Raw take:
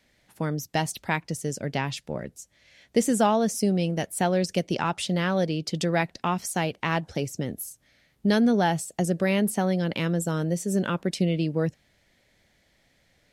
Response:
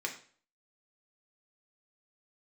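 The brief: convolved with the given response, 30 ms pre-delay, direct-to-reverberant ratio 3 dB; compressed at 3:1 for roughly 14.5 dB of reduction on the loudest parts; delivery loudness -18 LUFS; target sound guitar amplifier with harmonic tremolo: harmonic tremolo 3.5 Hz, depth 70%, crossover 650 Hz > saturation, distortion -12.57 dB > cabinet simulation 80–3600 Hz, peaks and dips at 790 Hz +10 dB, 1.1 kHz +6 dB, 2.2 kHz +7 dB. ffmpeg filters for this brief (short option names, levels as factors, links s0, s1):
-filter_complex "[0:a]acompressor=threshold=0.0126:ratio=3,asplit=2[s0][s1];[1:a]atrim=start_sample=2205,adelay=30[s2];[s1][s2]afir=irnorm=-1:irlink=0,volume=0.501[s3];[s0][s3]amix=inputs=2:normalize=0,acrossover=split=650[s4][s5];[s4]aeval=exprs='val(0)*(1-0.7/2+0.7/2*cos(2*PI*3.5*n/s))':c=same[s6];[s5]aeval=exprs='val(0)*(1-0.7/2-0.7/2*cos(2*PI*3.5*n/s))':c=same[s7];[s6][s7]amix=inputs=2:normalize=0,asoftclip=threshold=0.0178,highpass=80,equalizer=f=790:t=q:w=4:g=10,equalizer=f=1100:t=q:w=4:g=6,equalizer=f=2200:t=q:w=4:g=7,lowpass=f=3600:w=0.5412,lowpass=f=3600:w=1.3066,volume=15"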